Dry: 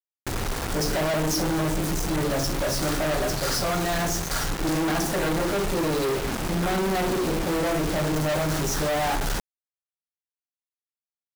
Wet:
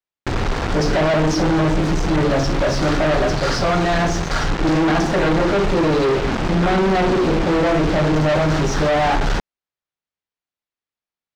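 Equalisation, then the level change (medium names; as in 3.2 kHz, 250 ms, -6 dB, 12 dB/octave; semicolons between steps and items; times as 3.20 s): distance through air 150 m; +8.5 dB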